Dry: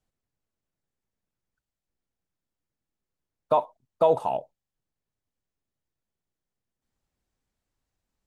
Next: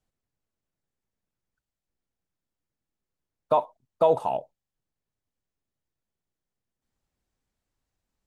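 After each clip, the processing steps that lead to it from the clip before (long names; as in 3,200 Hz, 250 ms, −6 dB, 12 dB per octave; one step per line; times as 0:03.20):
no processing that can be heard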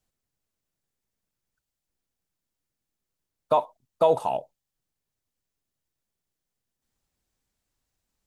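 high-shelf EQ 3,100 Hz +7 dB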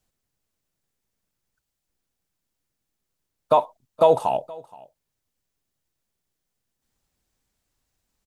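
single-tap delay 472 ms −22.5 dB
level +4 dB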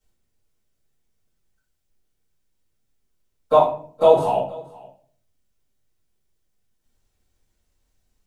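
rectangular room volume 46 cubic metres, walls mixed, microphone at 2.2 metres
level −9 dB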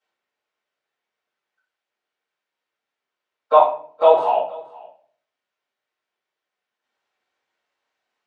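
band-pass filter 750–2,600 Hz
level +6 dB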